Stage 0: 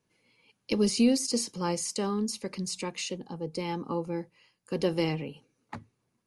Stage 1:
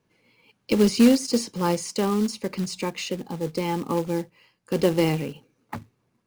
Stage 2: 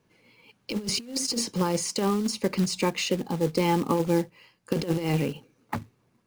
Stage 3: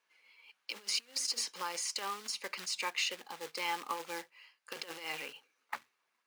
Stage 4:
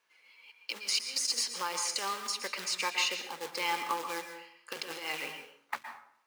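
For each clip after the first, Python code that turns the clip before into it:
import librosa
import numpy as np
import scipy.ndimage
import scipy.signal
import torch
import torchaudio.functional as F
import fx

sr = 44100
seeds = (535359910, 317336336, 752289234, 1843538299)

y1 = fx.lowpass(x, sr, hz=3100.0, slope=6)
y1 = fx.quant_float(y1, sr, bits=2)
y1 = y1 * librosa.db_to_amplitude(7.0)
y2 = fx.over_compress(y1, sr, threshold_db=-24.0, ratio=-0.5)
y3 = scipy.signal.sosfilt(scipy.signal.butter(2, 1400.0, 'highpass', fs=sr, output='sos'), y2)
y3 = fx.high_shelf(y3, sr, hz=4100.0, db=-8.0)
y4 = fx.rev_plate(y3, sr, seeds[0], rt60_s=0.64, hf_ratio=0.6, predelay_ms=105, drr_db=6.5)
y4 = y4 * librosa.db_to_amplitude(3.5)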